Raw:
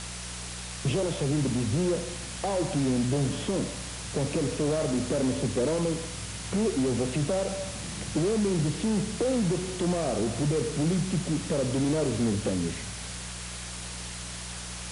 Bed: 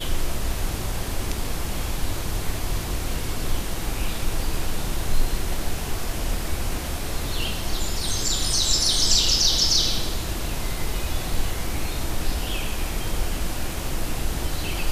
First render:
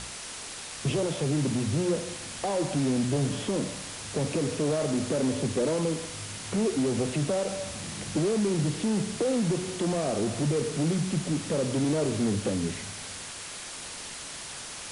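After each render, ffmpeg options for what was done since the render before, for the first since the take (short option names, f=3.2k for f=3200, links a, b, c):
-af "bandreject=f=60:t=h:w=4,bandreject=f=120:t=h:w=4,bandreject=f=180:t=h:w=4"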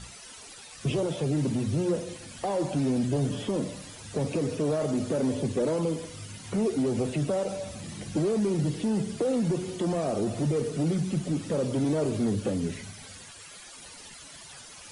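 -af "afftdn=nr=13:nf=-40"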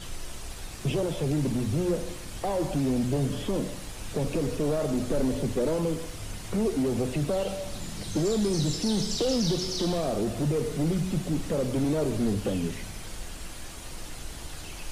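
-filter_complex "[1:a]volume=-14dB[a];[0:a][a]amix=inputs=2:normalize=0"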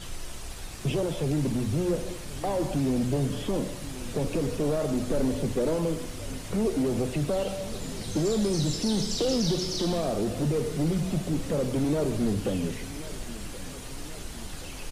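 -filter_complex "[0:a]asplit=2[a][b];[b]adelay=1076,lowpass=f=2k:p=1,volume=-16dB,asplit=2[c][d];[d]adelay=1076,lowpass=f=2k:p=1,volume=0.54,asplit=2[e][f];[f]adelay=1076,lowpass=f=2k:p=1,volume=0.54,asplit=2[g][h];[h]adelay=1076,lowpass=f=2k:p=1,volume=0.54,asplit=2[i][j];[j]adelay=1076,lowpass=f=2k:p=1,volume=0.54[k];[a][c][e][g][i][k]amix=inputs=6:normalize=0"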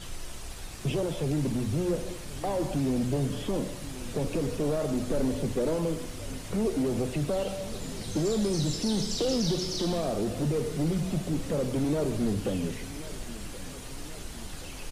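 -af "volume=-1.5dB"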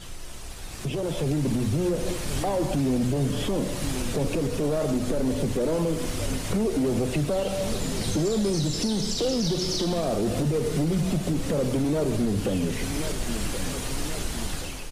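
-af "alimiter=level_in=3.5dB:limit=-24dB:level=0:latency=1:release=216,volume=-3.5dB,dynaudnorm=f=630:g=3:m=10.5dB"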